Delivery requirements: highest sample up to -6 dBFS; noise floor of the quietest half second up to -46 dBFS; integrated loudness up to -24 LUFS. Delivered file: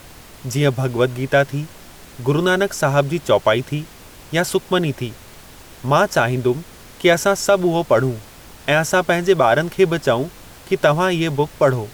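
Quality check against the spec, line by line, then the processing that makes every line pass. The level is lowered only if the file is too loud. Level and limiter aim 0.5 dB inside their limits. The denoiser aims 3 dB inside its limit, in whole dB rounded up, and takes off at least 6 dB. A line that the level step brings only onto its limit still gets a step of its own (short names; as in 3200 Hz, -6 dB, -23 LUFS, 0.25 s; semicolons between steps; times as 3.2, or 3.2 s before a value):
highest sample -3.0 dBFS: fail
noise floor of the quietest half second -41 dBFS: fail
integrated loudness -18.5 LUFS: fail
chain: gain -6 dB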